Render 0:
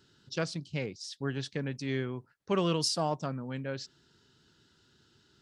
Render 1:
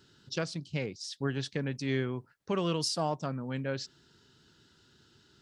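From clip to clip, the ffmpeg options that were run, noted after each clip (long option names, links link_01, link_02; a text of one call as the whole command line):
ffmpeg -i in.wav -af "alimiter=limit=-22dB:level=0:latency=1:release=484,volume=2.5dB" out.wav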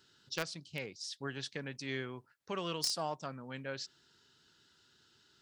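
ffmpeg -i in.wav -filter_complex "[0:a]lowshelf=frequency=500:gain=-10.5,asplit=2[link_01][link_02];[link_02]acrusher=bits=3:mix=0:aa=0.000001,volume=-6dB[link_03];[link_01][link_03]amix=inputs=2:normalize=0,volume=-2dB" out.wav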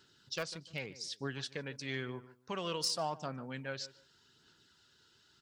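ffmpeg -i in.wav -filter_complex "[0:a]asplit=2[link_01][link_02];[link_02]adelay=148,lowpass=frequency=1900:poles=1,volume=-16.5dB,asplit=2[link_03][link_04];[link_04]adelay=148,lowpass=frequency=1900:poles=1,volume=0.24[link_05];[link_01][link_03][link_05]amix=inputs=3:normalize=0,aphaser=in_gain=1:out_gain=1:delay=2.1:decay=0.29:speed=0.89:type=sinusoidal,asoftclip=type=hard:threshold=-23dB" out.wav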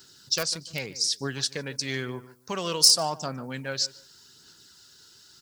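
ffmpeg -i in.wav -af "aexciter=amount=4:drive=4.3:freq=4400,volume=7.5dB" out.wav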